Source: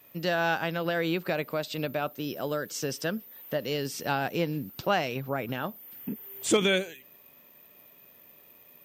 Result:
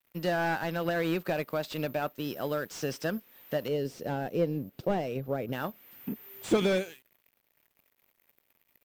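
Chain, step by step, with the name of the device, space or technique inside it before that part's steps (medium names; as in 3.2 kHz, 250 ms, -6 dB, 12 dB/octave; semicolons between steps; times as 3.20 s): early transistor amplifier (crossover distortion -50.5 dBFS; slew-rate limiter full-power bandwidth 58 Hz); 3.68–5.53 s: FFT filter 330 Hz 0 dB, 500 Hz +4 dB, 930 Hz -8 dB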